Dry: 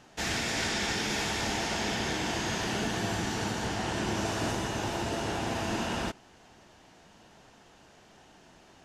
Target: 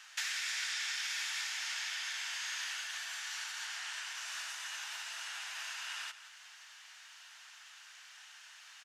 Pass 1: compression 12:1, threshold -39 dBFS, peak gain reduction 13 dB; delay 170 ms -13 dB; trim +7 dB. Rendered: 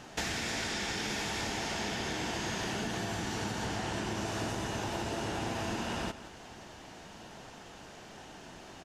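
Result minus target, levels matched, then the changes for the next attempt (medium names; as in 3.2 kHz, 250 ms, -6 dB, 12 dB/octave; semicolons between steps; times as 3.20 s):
1 kHz band +9.0 dB
add after compression: high-pass 1.4 kHz 24 dB/octave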